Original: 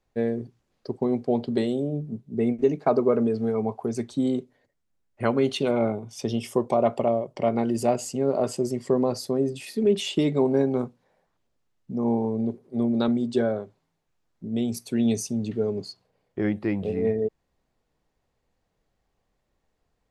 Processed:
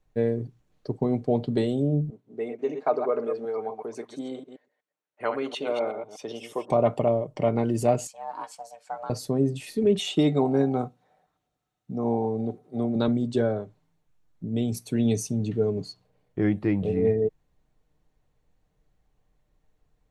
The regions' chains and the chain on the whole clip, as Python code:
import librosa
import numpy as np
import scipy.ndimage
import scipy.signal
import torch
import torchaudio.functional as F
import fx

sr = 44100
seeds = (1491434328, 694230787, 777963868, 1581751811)

y = fx.chain(x, sr, fx.reverse_delay(ms=123, wet_db=-8.0),
    fx.highpass(hz=540.0, slope=12),
    fx.high_shelf(hz=4600.0, db=-10.0), at=(2.1, 6.7))
y = fx.chain(y, sr, fx.ring_mod(carrier_hz=340.0),
    fx.highpass(hz=960.0, slope=12),
    fx.upward_expand(threshold_db=-43.0, expansion=1.5), at=(8.07, 9.1))
y = fx.chain(y, sr, fx.highpass(hz=47.0, slope=12),
    fx.low_shelf(hz=160.0, db=-7.5),
    fx.small_body(hz=(740.0, 1300.0, 3700.0), ring_ms=85, db=14), at=(9.99, 12.96))
y = fx.low_shelf(y, sr, hz=160.0, db=10.0)
y = fx.notch(y, sr, hz=4900.0, q=11.0)
y = y + 0.34 * np.pad(y, (int(6.6 * sr / 1000.0), 0))[:len(y)]
y = y * librosa.db_to_amplitude(-1.5)